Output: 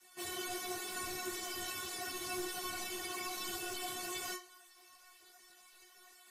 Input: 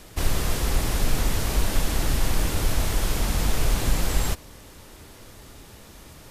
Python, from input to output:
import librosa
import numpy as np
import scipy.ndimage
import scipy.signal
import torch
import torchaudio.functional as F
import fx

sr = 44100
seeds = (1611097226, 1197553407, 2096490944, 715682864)

y = fx.spec_gate(x, sr, threshold_db=-15, keep='weak')
y = fx.stiff_resonator(y, sr, f0_hz=360.0, decay_s=0.35, stiffness=0.002)
y = fx.ensemble(y, sr)
y = y * 10.0 ** (8.5 / 20.0)